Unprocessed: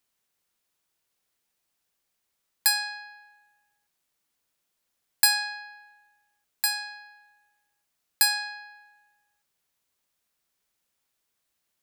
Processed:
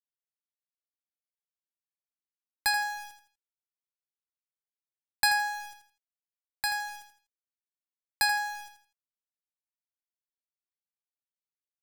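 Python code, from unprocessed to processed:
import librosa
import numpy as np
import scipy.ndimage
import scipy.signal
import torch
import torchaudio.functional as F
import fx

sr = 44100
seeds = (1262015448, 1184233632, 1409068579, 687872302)

y = fx.tilt_eq(x, sr, slope=-4.0)
y = np.where(np.abs(y) >= 10.0 ** (-42.5 / 20.0), y, 0.0)
y = fx.echo_feedback(y, sr, ms=82, feedback_pct=30, wet_db=-9.0)
y = F.gain(torch.from_numpy(y), 3.0).numpy()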